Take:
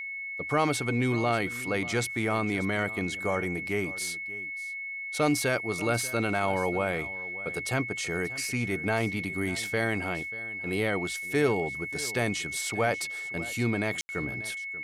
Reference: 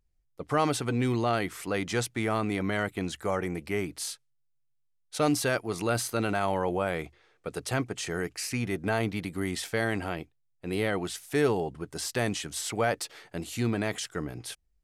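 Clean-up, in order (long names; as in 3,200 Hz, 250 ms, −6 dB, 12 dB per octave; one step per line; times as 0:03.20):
notch filter 2,200 Hz, Q 30
ambience match 0:14.01–0:14.09
echo removal 587 ms −17.5 dB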